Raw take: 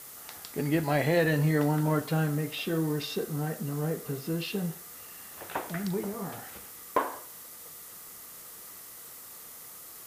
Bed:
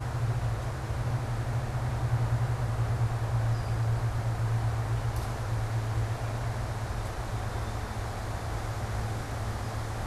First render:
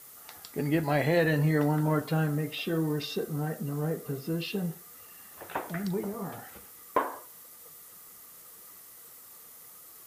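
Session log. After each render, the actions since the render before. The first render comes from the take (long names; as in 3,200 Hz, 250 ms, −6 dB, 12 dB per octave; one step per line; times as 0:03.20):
broadband denoise 6 dB, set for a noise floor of −47 dBFS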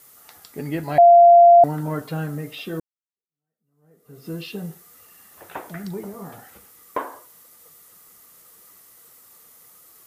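0:00.98–0:01.64: beep over 691 Hz −6.5 dBFS
0:02.80–0:04.28: fade in exponential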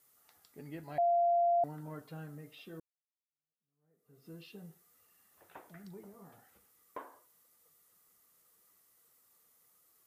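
level −18.5 dB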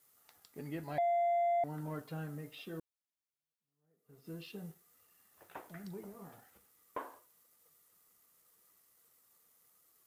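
downward compressor 3 to 1, threshold −33 dBFS, peak gain reduction 5 dB
leveller curve on the samples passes 1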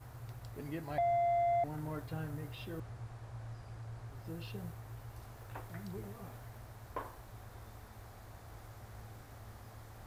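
mix in bed −18.5 dB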